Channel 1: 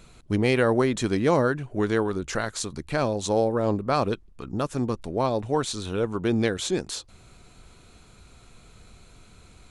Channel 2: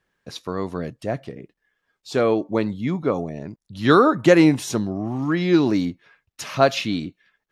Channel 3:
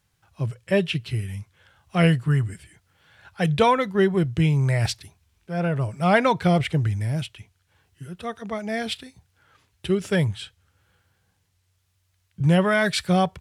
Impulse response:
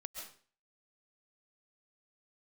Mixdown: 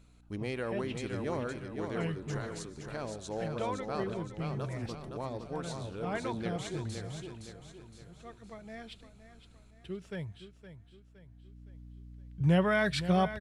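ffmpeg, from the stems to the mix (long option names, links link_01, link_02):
-filter_complex "[0:a]volume=-16.5dB,asplit=3[link_01][link_02][link_03];[link_02]volume=-8.5dB[link_04];[link_03]volume=-4dB[link_05];[2:a]highshelf=frequency=7200:gain=-11.5,aeval=exprs='val(0)+0.00891*(sin(2*PI*60*n/s)+sin(2*PI*2*60*n/s)/2+sin(2*PI*3*60*n/s)/3+sin(2*PI*4*60*n/s)/4+sin(2*PI*5*60*n/s)/5)':channel_layout=same,volume=-7dB,afade=type=in:start_time=11.21:duration=0.54:silence=0.281838,asplit=2[link_06][link_07];[link_07]volume=-12.5dB[link_08];[3:a]atrim=start_sample=2205[link_09];[link_04][link_09]afir=irnorm=-1:irlink=0[link_10];[link_05][link_08]amix=inputs=2:normalize=0,aecho=0:1:515|1030|1545|2060|2575|3090:1|0.43|0.185|0.0795|0.0342|0.0147[link_11];[link_01][link_06][link_10][link_11]amix=inputs=4:normalize=0"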